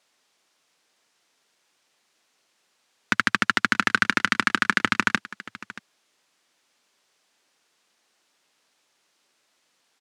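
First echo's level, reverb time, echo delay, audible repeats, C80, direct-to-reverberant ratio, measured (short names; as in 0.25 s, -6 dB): -18.0 dB, none, 0.629 s, 1, none, none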